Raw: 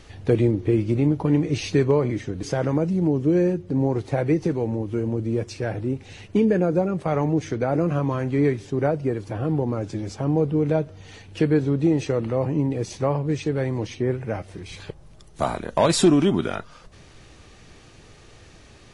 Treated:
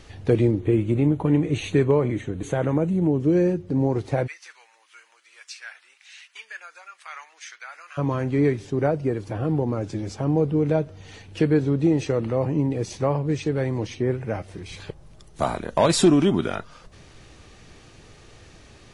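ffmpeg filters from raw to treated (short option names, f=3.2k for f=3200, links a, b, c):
-filter_complex "[0:a]asettb=1/sr,asplit=3[a][b][c];[a]atrim=end=0.594[d];[b]atrim=start=0.59:end=3.2,asetpts=PTS-STARTPTS,afade=t=in:d=0.004:c=qsin,afade=t=out:st=2.606:d=0.004:c=qsin,asuperstop=centerf=5100:order=4:qfactor=2.2[e];[c]atrim=start=3.196[f];[d][e]acrossfade=d=0.004:c1=hsin:c2=qsin[g];[g][f]acrossfade=d=0.004:c1=qsin:c2=hsin,asplit=3[h][i][j];[h]afade=t=out:st=4.26:d=0.02[k];[i]highpass=f=1.4k:w=0.5412,highpass=f=1.4k:w=1.3066,afade=t=in:st=4.26:d=0.02,afade=t=out:st=7.97:d=0.02[l];[j]afade=t=in:st=7.97:d=0.02[m];[k][l][m]amix=inputs=3:normalize=0"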